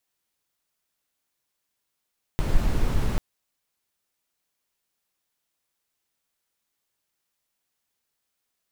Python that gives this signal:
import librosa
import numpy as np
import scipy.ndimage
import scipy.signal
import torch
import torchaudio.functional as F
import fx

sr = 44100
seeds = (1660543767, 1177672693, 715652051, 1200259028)

y = fx.noise_colour(sr, seeds[0], length_s=0.79, colour='brown', level_db=-20.5)